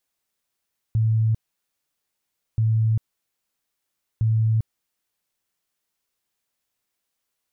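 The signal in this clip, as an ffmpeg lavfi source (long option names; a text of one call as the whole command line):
ffmpeg -f lavfi -i "aevalsrc='0.15*sin(2*PI*111*mod(t,1.63))*lt(mod(t,1.63),44/111)':duration=4.89:sample_rate=44100" out.wav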